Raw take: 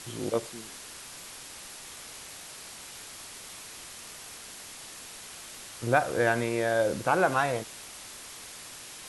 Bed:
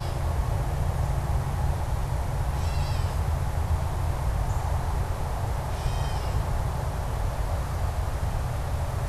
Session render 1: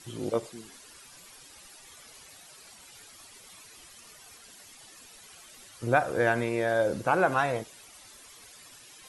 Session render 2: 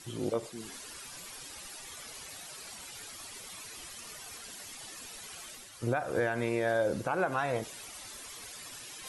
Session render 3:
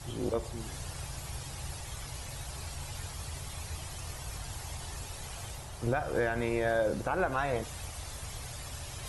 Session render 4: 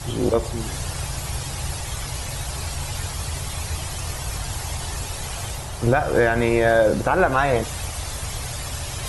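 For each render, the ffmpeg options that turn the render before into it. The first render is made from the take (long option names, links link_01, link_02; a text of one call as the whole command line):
ffmpeg -i in.wav -af "afftdn=noise_reduction=12:noise_floor=-45" out.wav
ffmpeg -i in.wav -af "alimiter=limit=-19.5dB:level=0:latency=1:release=194,areverse,acompressor=mode=upward:threshold=-38dB:ratio=2.5,areverse" out.wav
ffmpeg -i in.wav -i bed.wav -filter_complex "[1:a]volume=-15.5dB[link_01];[0:a][link_01]amix=inputs=2:normalize=0" out.wav
ffmpeg -i in.wav -af "volume=12dB" out.wav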